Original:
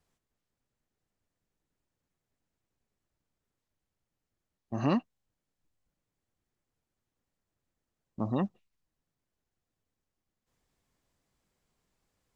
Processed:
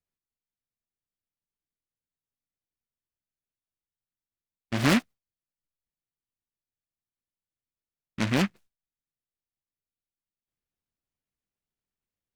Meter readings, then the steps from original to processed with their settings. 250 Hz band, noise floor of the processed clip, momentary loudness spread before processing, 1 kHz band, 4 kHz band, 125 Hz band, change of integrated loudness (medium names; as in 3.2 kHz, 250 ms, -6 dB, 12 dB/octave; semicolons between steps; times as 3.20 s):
+5.0 dB, under -85 dBFS, 10 LU, +4.0 dB, +17.5 dB, +5.5 dB, +6.0 dB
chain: gate with hold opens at -59 dBFS; delay time shaken by noise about 1.7 kHz, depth 0.24 ms; trim +5.5 dB